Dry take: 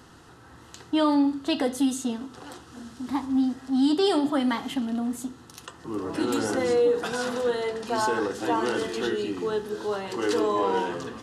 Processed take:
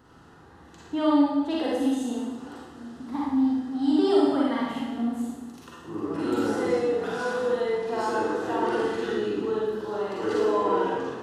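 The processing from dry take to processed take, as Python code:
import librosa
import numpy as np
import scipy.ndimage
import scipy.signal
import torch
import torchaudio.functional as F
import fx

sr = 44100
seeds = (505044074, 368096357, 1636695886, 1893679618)

y = fx.peak_eq(x, sr, hz=9600.0, db=-10.0, octaves=2.9)
y = fx.rev_schroeder(y, sr, rt60_s=1.1, comb_ms=38, drr_db=-5.5)
y = F.gain(torch.from_numpy(y), -5.5).numpy()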